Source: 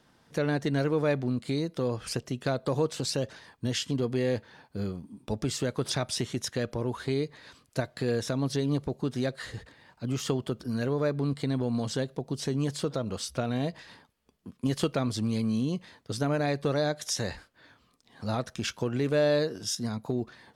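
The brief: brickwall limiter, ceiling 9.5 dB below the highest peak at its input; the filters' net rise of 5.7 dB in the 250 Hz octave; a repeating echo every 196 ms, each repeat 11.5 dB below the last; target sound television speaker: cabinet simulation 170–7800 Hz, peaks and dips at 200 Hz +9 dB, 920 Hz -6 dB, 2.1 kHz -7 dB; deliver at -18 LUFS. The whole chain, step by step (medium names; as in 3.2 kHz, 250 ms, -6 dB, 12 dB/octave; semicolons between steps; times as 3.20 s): peaking EQ 250 Hz +4 dB; peak limiter -21.5 dBFS; cabinet simulation 170–7800 Hz, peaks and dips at 200 Hz +9 dB, 920 Hz -6 dB, 2.1 kHz -7 dB; feedback delay 196 ms, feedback 27%, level -11.5 dB; trim +13 dB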